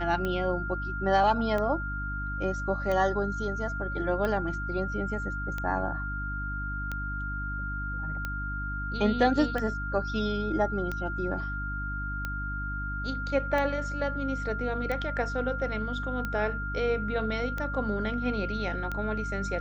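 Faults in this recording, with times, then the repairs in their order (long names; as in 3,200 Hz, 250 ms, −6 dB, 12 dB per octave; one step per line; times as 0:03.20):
mains hum 50 Hz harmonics 6 −35 dBFS
scratch tick 45 rpm −19 dBFS
whistle 1,400 Hz −34 dBFS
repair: click removal
hum removal 50 Hz, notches 6
notch filter 1,400 Hz, Q 30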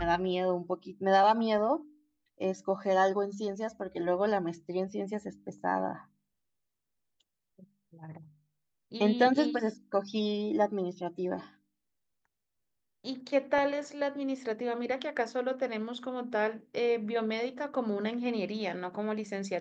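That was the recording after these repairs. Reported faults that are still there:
none of them is left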